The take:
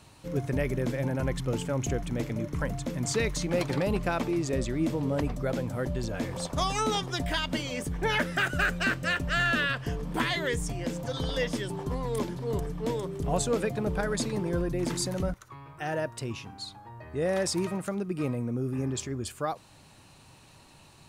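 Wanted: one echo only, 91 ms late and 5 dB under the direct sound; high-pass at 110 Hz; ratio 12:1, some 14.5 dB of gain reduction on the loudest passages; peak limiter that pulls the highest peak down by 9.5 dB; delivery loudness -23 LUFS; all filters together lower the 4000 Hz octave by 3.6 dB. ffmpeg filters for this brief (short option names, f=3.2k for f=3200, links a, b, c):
-af "highpass=110,equalizer=f=4k:t=o:g=-5,acompressor=threshold=-38dB:ratio=12,alimiter=level_in=12dB:limit=-24dB:level=0:latency=1,volume=-12dB,aecho=1:1:91:0.562,volume=21dB"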